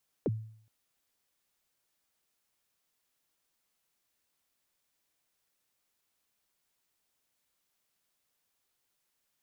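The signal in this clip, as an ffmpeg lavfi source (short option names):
-f lavfi -i "aevalsrc='0.0631*pow(10,-3*t/0.59)*sin(2*PI*(550*0.034/log(110/550)*(exp(log(110/550)*min(t,0.034)/0.034)-1)+110*max(t-0.034,0)))':d=0.42:s=44100"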